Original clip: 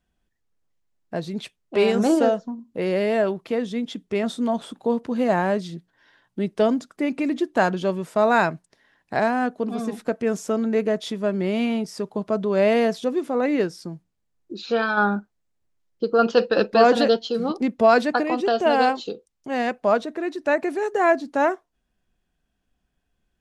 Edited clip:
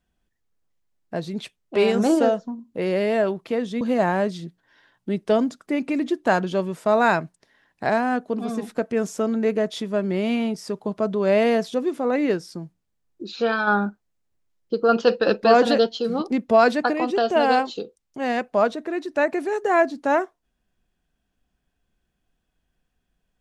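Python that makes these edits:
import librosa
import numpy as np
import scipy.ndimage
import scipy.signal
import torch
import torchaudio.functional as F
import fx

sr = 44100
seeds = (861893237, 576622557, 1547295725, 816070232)

y = fx.edit(x, sr, fx.cut(start_s=3.81, length_s=1.3), tone=tone)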